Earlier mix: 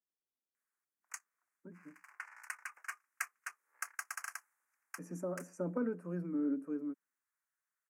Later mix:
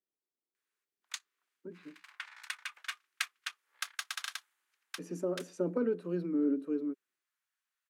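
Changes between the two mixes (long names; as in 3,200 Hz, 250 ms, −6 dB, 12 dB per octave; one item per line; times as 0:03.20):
speech: add parametric band 390 Hz +11 dB 0.65 octaves
master: remove Butterworth band-reject 3,600 Hz, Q 0.8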